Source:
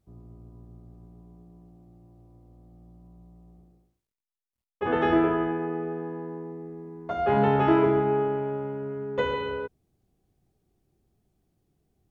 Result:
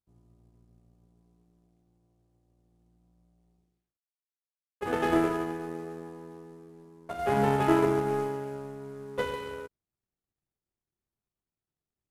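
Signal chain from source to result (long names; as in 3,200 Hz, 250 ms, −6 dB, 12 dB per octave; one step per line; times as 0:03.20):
variable-slope delta modulation 64 kbit/s
power curve on the samples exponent 1.4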